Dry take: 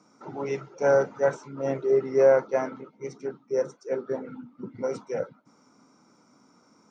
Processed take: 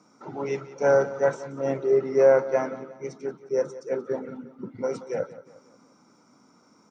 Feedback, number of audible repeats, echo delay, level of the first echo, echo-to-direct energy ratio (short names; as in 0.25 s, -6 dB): 43%, 3, 0.179 s, -16.5 dB, -15.5 dB